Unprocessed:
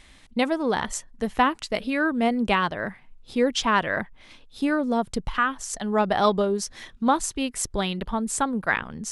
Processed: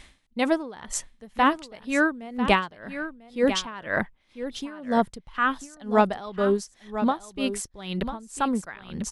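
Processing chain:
on a send: single-tap delay 995 ms −11 dB
on the sum: tremolo with a sine in dB 2 Hz, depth 22 dB
level +3.5 dB

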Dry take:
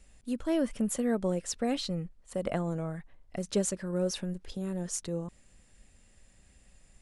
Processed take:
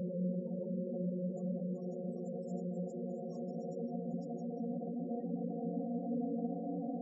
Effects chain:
high-pass filter 63 Hz 24 dB per octave
dense smooth reverb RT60 0.98 s, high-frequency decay 0.8×, pre-delay 85 ms, DRR 4.5 dB
brickwall limiter −27.5 dBFS, peak gain reduction 11 dB
high-shelf EQ 3,300 Hz −8 dB
mains-hum notches 50/100/150/200/250/300/350/400/450 Hz
extreme stretch with random phases 25×, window 0.50 s, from 0:01.41
gate on every frequency bin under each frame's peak −15 dB strong
parametric band 140 Hz +7.5 dB 2.7 octaves
level −6 dB

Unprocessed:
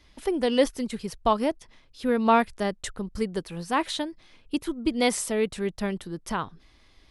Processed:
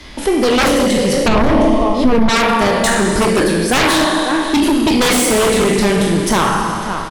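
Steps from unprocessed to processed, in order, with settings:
peak hold with a decay on every bin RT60 0.50 s
0:02.86–0:03.96: thirty-one-band graphic EQ 315 Hz +10 dB, 630 Hz +6 dB, 1,600 Hz +11 dB, 10,000 Hz +8 dB
slap from a distant wall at 94 metres, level −15 dB
four-comb reverb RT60 1.8 s, combs from 28 ms, DRR 3.5 dB
automatic gain control gain up to 6.5 dB
sine wavefolder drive 14 dB, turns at −2 dBFS
0:01.28–0:02.29: spectral tilt −3.5 dB per octave
boost into a limiter −6 dB
multiband upward and downward compressor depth 40%
level −1.5 dB

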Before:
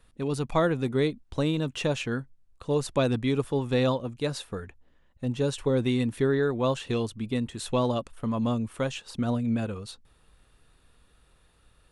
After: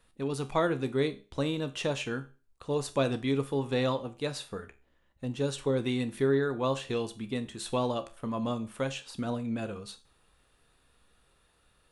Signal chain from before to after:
low-shelf EQ 170 Hz −7 dB
tuned comb filter 68 Hz, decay 0.31 s, harmonics all, mix 60%
four-comb reverb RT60 0.36 s, combs from 32 ms, DRR 17 dB
level +2.5 dB

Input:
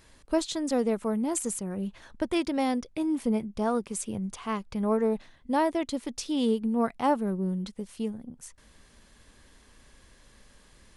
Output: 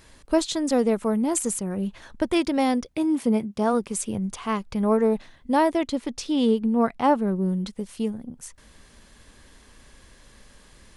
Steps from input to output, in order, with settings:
0:02.85–0:03.72: high-pass filter 48 Hz → 130 Hz
0:05.87–0:07.36: high-shelf EQ 7,600 Hz −10 dB
level +5 dB

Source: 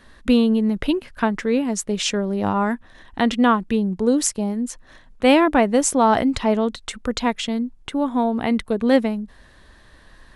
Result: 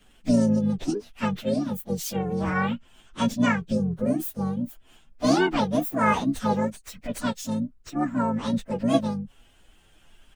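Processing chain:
partials spread apart or drawn together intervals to 128%
pitch-shifted copies added −12 semitones −12 dB, −5 semitones −11 dB, +3 semitones −17 dB
level −4 dB

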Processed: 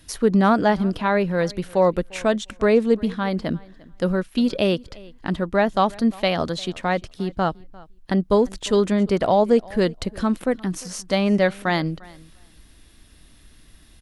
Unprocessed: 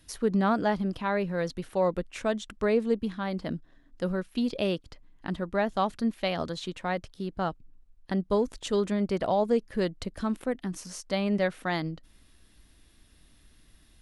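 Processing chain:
repeating echo 349 ms, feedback 15%, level −23 dB
level +8 dB

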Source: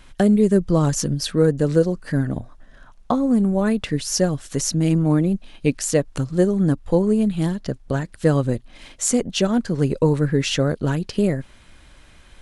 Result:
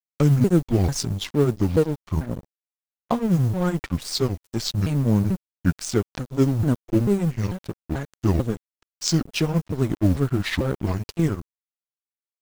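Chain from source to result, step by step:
pitch shifter swept by a sawtooth −10 semitones, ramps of 442 ms
noise that follows the level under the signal 30 dB
dead-zone distortion −32.5 dBFS

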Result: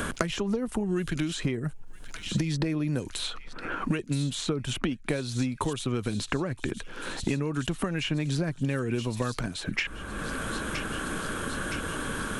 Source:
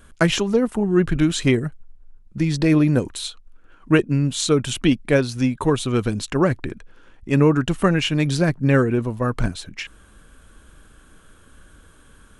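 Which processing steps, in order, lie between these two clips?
downward compressor 12 to 1, threshold −29 dBFS, peak gain reduction 19.5 dB
delay with a high-pass on its return 967 ms, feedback 62%, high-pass 3,000 Hz, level −15.5 dB
multiband upward and downward compressor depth 100%
level +3.5 dB

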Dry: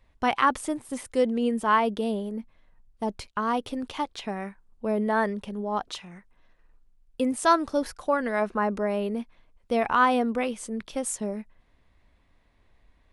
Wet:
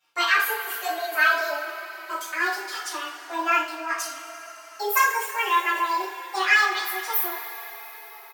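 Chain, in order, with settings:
gliding playback speed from 140% → 175%
high-pass filter 810 Hz 12 dB per octave
high-shelf EQ 8,100 Hz +8 dB
coupled-rooms reverb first 0.43 s, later 4.9 s, from −18 dB, DRR −9 dB
barber-pole flanger 3.8 ms −0.27 Hz
level −2.5 dB

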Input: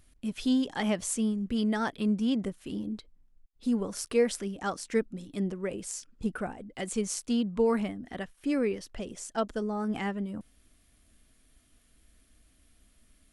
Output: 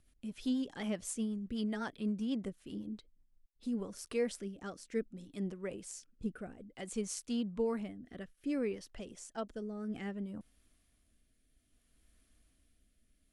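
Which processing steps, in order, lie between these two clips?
rotating-speaker cabinet horn 8 Hz, later 0.6 Hz, at 0:03.34
level −6.5 dB

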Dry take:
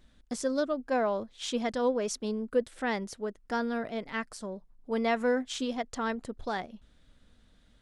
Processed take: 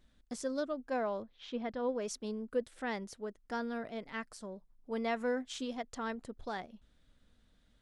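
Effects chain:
0:01.22–0:01.89: high-frequency loss of the air 260 metres
level −6.5 dB

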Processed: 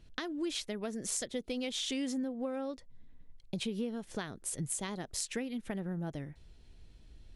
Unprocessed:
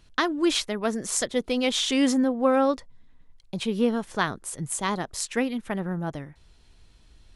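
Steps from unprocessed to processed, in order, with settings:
downward compressor 6 to 1, threshold −33 dBFS, peak gain reduction 15.5 dB
parametric band 1,100 Hz −8.5 dB 1.1 octaves
one half of a high-frequency compander decoder only

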